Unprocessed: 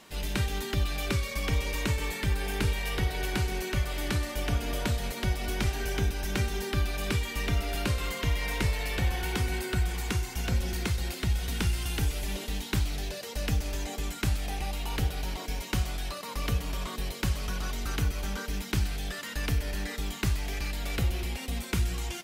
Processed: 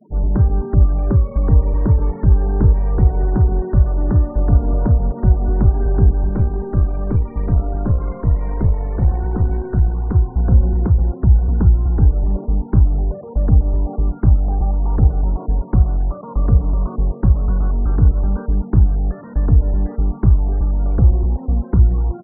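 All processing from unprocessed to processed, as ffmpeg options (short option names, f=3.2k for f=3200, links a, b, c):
-filter_complex "[0:a]asettb=1/sr,asplit=3[a][b][c];[a]atrim=end=6.294[d];[b]atrim=start=6.29:end=10.14,asetpts=PTS-STARTPTS,afade=t=in:d=0.004:c=qsin,afade=t=out:st=3.846:d=0.004:c=qsin,highpass=44,aeval=exprs='(tanh(11.2*val(0)+0.5)-tanh(0.5))/11.2':c=same,equalizer=f=3.6k:t=o:w=1.5:g=7[e];[c]atrim=start=10.136[f];[d][e]acrossfade=d=0.004:c1=hsin:c2=qsin[g];[g][f]acrossfade=d=0.004:c1=qsin:c2=hsin,lowpass=f=1.1k:w=0.5412,lowpass=f=1.1k:w=1.3066,afftfilt=real='re*gte(hypot(re,im),0.00501)':imag='im*gte(hypot(re,im),0.00501)':win_size=1024:overlap=0.75,lowshelf=f=260:g=10.5,volume=7dB"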